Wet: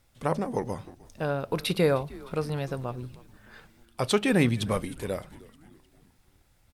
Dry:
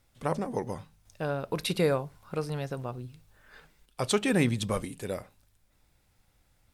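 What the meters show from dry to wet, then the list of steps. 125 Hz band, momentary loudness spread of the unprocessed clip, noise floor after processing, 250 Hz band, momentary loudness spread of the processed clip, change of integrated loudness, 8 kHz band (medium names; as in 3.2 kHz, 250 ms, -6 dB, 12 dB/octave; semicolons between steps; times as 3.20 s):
+2.5 dB, 13 LU, -65 dBFS, +2.5 dB, 13 LU, +2.5 dB, -1.0 dB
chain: dynamic bell 7.2 kHz, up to -6 dB, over -55 dBFS, Q 1.7; on a send: frequency-shifting echo 307 ms, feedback 55%, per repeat -120 Hz, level -20.5 dB; on the sum: trim +2.5 dB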